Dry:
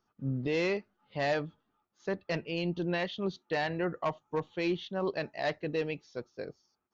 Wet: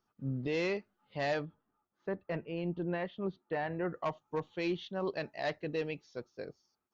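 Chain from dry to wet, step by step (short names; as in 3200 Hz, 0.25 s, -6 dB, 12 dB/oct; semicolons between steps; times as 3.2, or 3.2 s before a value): 1.45–3.85 LPF 1800 Hz 12 dB/oct; gain -3 dB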